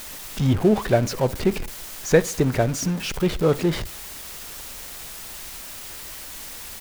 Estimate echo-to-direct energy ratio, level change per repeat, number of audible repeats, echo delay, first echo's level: -21.5 dB, -7.5 dB, 2, 66 ms, -22.5 dB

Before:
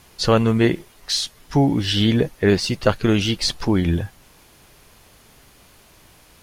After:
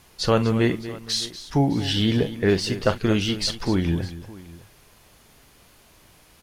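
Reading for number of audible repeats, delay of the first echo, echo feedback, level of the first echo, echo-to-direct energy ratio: 3, 42 ms, no regular repeats, -14.0 dB, -10.5 dB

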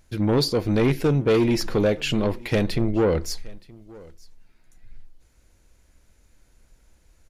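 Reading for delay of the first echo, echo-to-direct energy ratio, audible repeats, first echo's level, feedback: 922 ms, -23.5 dB, 1, -23.5 dB, no regular repeats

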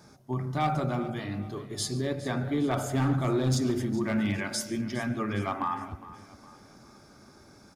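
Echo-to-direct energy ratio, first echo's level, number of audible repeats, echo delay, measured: -15.0 dB, -22.0 dB, 4, 143 ms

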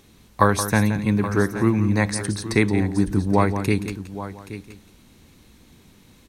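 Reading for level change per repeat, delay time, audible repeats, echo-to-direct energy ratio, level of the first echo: no regular repeats, 173 ms, 3, -9.0 dB, -11.0 dB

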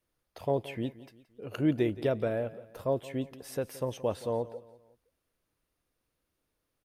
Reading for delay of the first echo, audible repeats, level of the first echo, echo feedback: 173 ms, 3, -17.5 dB, 41%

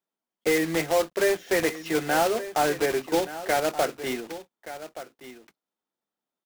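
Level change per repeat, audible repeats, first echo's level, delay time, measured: no regular repeats, 1, -14.0 dB, 1175 ms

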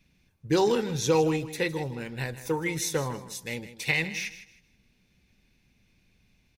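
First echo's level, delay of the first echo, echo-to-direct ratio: -14.0 dB, 158 ms, -13.5 dB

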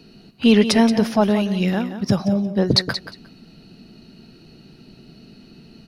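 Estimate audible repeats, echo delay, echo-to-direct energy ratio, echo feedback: 2, 178 ms, -11.0 dB, 17%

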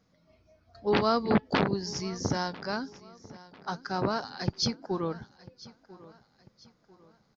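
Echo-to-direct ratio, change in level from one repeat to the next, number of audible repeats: -19.5 dB, -8.0 dB, 2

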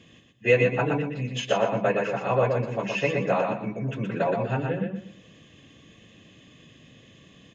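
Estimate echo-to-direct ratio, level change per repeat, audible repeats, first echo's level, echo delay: -3.5 dB, -11.0 dB, 3, -4.0 dB, 121 ms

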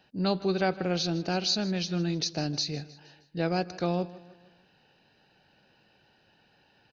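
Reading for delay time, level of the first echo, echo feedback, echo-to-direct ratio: 156 ms, -18.5 dB, 48%, -17.5 dB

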